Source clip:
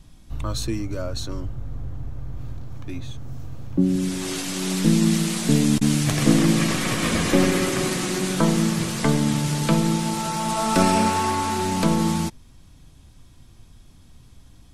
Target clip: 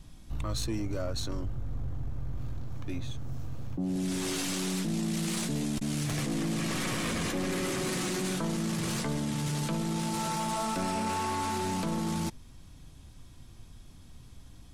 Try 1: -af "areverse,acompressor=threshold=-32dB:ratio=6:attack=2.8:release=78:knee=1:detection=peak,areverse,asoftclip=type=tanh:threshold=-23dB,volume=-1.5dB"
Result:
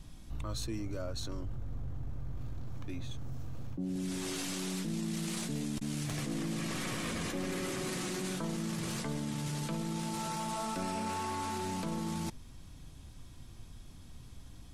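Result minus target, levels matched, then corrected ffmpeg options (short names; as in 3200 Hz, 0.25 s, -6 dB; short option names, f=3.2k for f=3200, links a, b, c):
compressor: peak gain reduction +6 dB
-af "areverse,acompressor=threshold=-24.5dB:ratio=6:attack=2.8:release=78:knee=1:detection=peak,areverse,asoftclip=type=tanh:threshold=-23dB,volume=-1.5dB"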